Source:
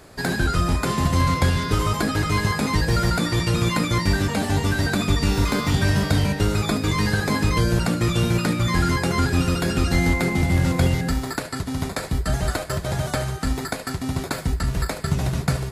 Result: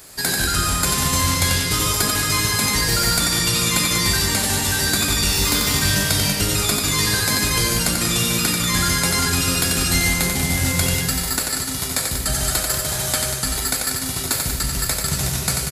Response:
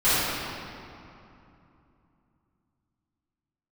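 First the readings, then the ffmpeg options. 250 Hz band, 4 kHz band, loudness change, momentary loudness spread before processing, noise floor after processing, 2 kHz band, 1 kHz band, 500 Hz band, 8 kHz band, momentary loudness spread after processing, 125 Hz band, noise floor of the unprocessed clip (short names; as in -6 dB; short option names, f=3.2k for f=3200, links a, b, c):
-3.0 dB, +10.0 dB, +4.0 dB, 6 LU, -26 dBFS, +4.0 dB, +0.5 dB, -2.0 dB, +15.0 dB, 4 LU, -3.0 dB, -33 dBFS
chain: -af "aecho=1:1:90|189|297.9|417.7|549.5:0.631|0.398|0.251|0.158|0.1,crystalizer=i=7:c=0,volume=-5dB"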